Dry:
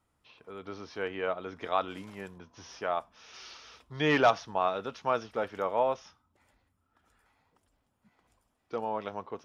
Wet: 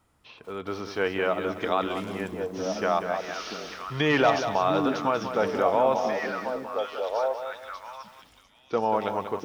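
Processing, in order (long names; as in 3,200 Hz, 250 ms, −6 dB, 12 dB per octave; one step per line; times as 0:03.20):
brickwall limiter −21.5 dBFS, peak gain reduction 8.5 dB
echo through a band-pass that steps 697 ms, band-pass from 230 Hz, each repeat 1.4 octaves, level 0 dB
feedback echo at a low word length 189 ms, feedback 35%, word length 10 bits, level −9 dB
level +8.5 dB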